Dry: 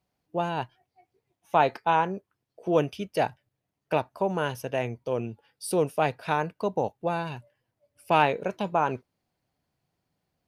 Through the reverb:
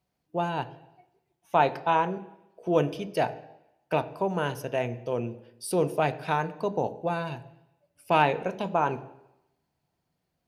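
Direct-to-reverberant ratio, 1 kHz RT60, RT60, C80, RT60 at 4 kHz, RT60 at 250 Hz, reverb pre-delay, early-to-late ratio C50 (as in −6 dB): 10.5 dB, 0.90 s, 0.90 s, 18.0 dB, 0.90 s, 0.85 s, 3 ms, 16.0 dB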